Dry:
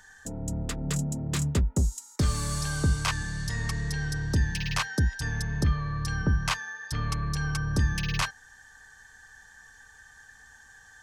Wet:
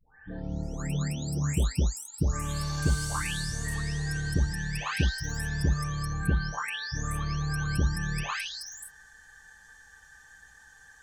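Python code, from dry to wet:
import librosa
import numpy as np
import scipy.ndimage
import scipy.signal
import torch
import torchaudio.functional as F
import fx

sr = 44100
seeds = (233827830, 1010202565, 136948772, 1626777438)

y = fx.spec_delay(x, sr, highs='late', ms=634)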